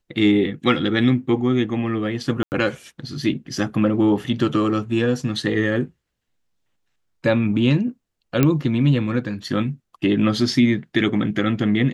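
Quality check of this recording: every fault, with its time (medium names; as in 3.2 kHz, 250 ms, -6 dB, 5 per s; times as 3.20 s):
2.43–2.52 s: dropout 89 ms
8.43 s: pop -4 dBFS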